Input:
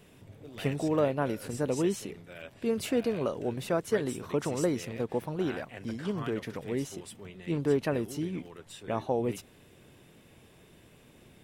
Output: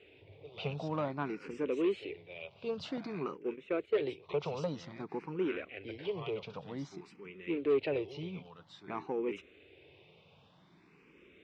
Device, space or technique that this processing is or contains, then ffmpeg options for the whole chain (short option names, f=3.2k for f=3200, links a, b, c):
barber-pole phaser into a guitar amplifier: -filter_complex "[0:a]asettb=1/sr,asplit=3[a][b][c];[a]atrim=end=2.974[d];[b]atrim=start=2.97:end=4.29,asetpts=PTS-STARTPTS,afade=t=in:d=0.004:c=qsin,afade=t=out:st=1.316:d=0.004:c=qsin,agate=range=-13dB:threshold=-33dB:ratio=16:detection=peak[e];[c]atrim=start=4.286[f];[d][e]acrossfade=d=0.004:c1=hsin:c2=qsin[g];[g][f]acrossfade=d=0.004:c1=qsin:c2=hsin,asplit=2[h][i];[i]afreqshift=0.52[j];[h][j]amix=inputs=2:normalize=1,asoftclip=type=tanh:threshold=-23.5dB,highpass=97,equalizer=f=120:t=q:w=4:g=-8,equalizer=f=230:t=q:w=4:g=-9,equalizer=f=410:t=q:w=4:g=3,equalizer=f=650:t=q:w=4:g=-3,equalizer=f=1.7k:t=q:w=4:g=-6,equalizer=f=2.4k:t=q:w=4:g=7,lowpass=f=4.3k:w=0.5412,lowpass=f=4.3k:w=1.3066"